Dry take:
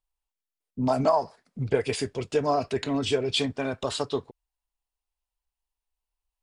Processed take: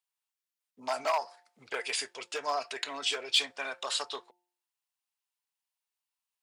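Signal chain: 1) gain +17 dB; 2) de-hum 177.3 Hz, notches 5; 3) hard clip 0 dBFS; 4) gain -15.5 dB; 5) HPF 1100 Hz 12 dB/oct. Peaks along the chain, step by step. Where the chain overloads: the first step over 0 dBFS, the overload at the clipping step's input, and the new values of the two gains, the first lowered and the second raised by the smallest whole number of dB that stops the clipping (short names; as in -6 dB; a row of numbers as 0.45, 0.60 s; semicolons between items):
+6.5, +6.5, 0.0, -15.5, -13.5 dBFS; step 1, 6.5 dB; step 1 +10 dB, step 4 -8.5 dB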